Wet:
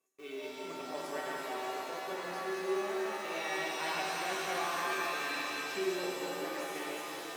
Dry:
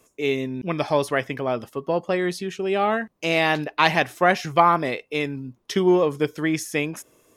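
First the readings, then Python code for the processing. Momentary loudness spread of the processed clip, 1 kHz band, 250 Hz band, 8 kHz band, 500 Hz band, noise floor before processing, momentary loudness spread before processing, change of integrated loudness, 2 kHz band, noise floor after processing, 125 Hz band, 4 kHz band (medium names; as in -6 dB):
7 LU, -13.5 dB, -17.0 dB, -5.5 dB, -14.5 dB, -65 dBFS, 9 LU, -13.5 dB, -11.0 dB, -44 dBFS, -26.0 dB, -9.5 dB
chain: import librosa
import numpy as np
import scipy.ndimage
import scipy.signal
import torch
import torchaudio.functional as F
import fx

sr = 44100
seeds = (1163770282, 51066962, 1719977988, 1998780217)

p1 = fx.reverse_delay_fb(x, sr, ms=176, feedback_pct=41, wet_db=-1.0)
p2 = fx.schmitt(p1, sr, flips_db=-30.5)
p3 = p1 + (p2 * librosa.db_to_amplitude(-10.5))
p4 = scipy.signal.sosfilt(scipy.signal.butter(2, 260.0, 'highpass', fs=sr, output='sos'), p3)
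p5 = fx.comb_fb(p4, sr, f0_hz=380.0, decay_s=0.53, harmonics='all', damping=0.0, mix_pct=90)
p6 = fx.rev_shimmer(p5, sr, seeds[0], rt60_s=3.5, semitones=7, shimmer_db=-2, drr_db=-1.5)
y = p6 * librosa.db_to_amplitude(-7.5)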